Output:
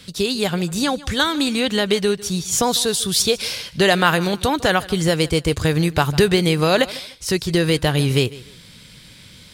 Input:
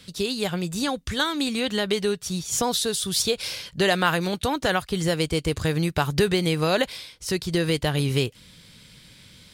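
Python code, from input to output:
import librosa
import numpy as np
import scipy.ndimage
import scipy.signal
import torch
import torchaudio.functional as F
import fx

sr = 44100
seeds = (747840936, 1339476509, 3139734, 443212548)

y = fx.echo_feedback(x, sr, ms=150, feedback_pct=28, wet_db=-19.5)
y = y * 10.0 ** (5.5 / 20.0)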